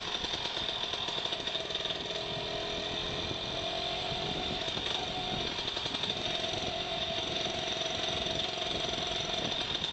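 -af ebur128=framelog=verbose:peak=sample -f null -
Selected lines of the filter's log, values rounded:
Integrated loudness:
  I:         -32.5 LUFS
  Threshold: -42.5 LUFS
Loudness range:
  LRA:         1.4 LU
  Threshold: -52.6 LUFS
  LRA low:   -33.3 LUFS
  LRA high:  -32.0 LUFS
Sample peak:
  Peak:      -18.1 dBFS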